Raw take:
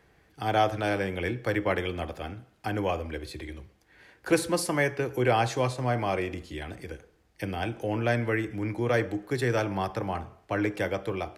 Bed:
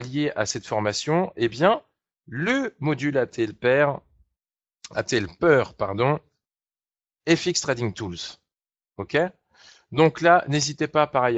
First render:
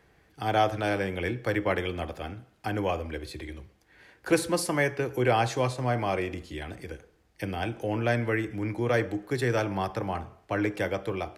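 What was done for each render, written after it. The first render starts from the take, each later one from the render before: nothing audible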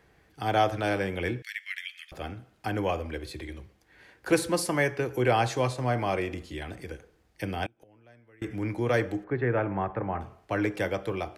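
1.42–2.12 elliptic high-pass 1900 Hz, stop band 60 dB; 7.66–8.42 flipped gate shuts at -28 dBFS, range -30 dB; 9.24–10.21 LPF 2100 Hz 24 dB/oct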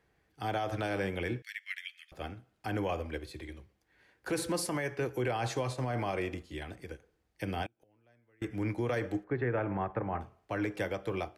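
limiter -22.5 dBFS, peak gain reduction 11.5 dB; upward expander 1.5:1, over -49 dBFS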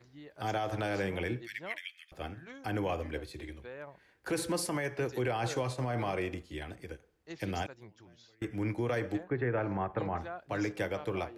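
add bed -26.5 dB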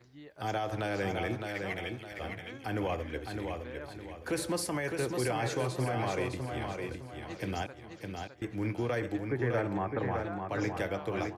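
feedback echo 0.61 s, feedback 37%, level -5 dB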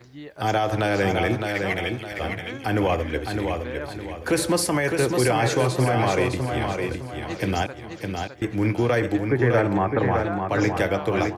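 gain +11 dB

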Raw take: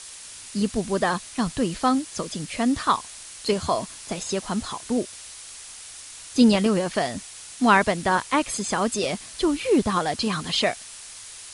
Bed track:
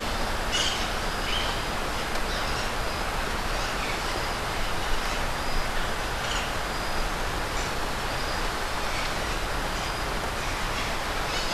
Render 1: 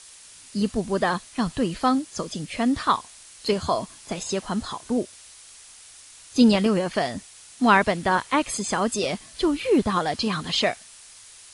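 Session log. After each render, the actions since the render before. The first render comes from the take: noise print and reduce 6 dB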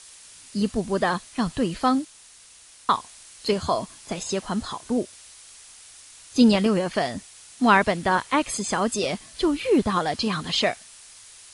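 2.05–2.89 room tone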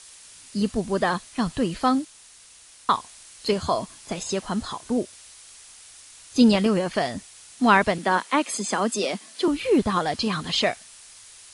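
7.98–9.48 steep high-pass 180 Hz 48 dB/oct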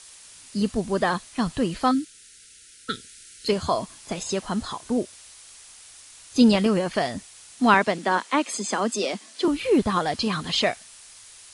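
1.91–3.48 brick-wall FIR band-stop 510–1300 Hz; 7.74–9.45 Chebyshev band-pass 220–8000 Hz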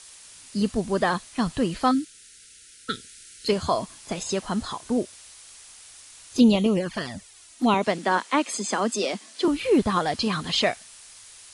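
6.37–7.83 envelope flanger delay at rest 3.6 ms, full sweep at -16 dBFS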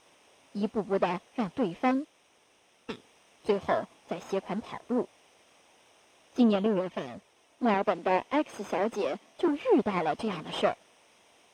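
minimum comb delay 0.34 ms; band-pass 690 Hz, Q 0.75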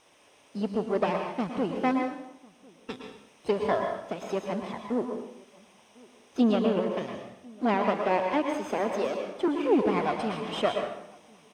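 outdoor echo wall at 180 m, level -25 dB; plate-style reverb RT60 0.72 s, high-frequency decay 0.85×, pre-delay 0.1 s, DRR 3.5 dB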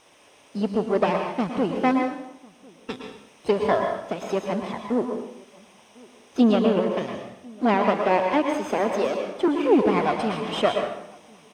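gain +5 dB

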